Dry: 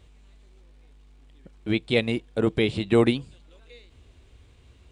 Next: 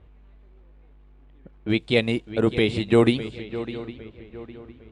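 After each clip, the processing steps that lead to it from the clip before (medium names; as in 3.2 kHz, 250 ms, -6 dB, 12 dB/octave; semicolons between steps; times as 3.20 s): shuffle delay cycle 808 ms, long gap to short 3:1, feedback 37%, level -14 dB; level-controlled noise filter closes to 1.6 kHz, open at -22 dBFS; trim +2 dB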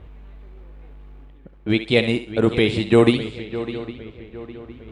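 reverse; upward compressor, threshold -36 dBFS; reverse; thinning echo 67 ms, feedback 33%, level -10 dB; trim +3 dB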